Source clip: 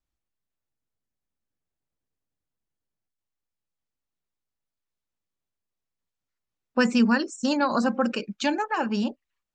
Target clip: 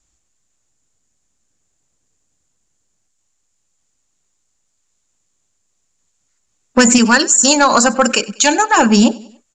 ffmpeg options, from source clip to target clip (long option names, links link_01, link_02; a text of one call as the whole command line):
ffmpeg -i in.wav -filter_complex "[0:a]asettb=1/sr,asplit=3[link_01][link_02][link_03];[link_01]atrim=end=6.984[link_04];[link_02]atrim=start=6.98:end=8.77,asetpts=PTS-STARTPTS,afade=type=in:duration=0.004:curve=qsin,afade=type=out:start_time=1.786:duration=0.004:curve=qsin,equalizer=frequency=180:width=0.52:gain=-9.5[link_05];[link_03]atrim=start=8.766[link_06];[link_04][link_05]acrossfade=duration=0.004:curve1=hsin:curve2=qsin[link_07];[link_07][link_06]acrossfade=duration=0.004:curve1=qsin:curve2=hsin,asoftclip=type=tanh:threshold=-17dB,lowpass=frequency=7100:width_type=q:width=10,asplit=2[link_08][link_09];[link_09]aecho=0:1:96|192|288:0.0794|0.0373|0.0175[link_10];[link_08][link_10]amix=inputs=2:normalize=0,alimiter=level_in=17.5dB:limit=-1dB:release=50:level=0:latency=1,volume=-1dB" out.wav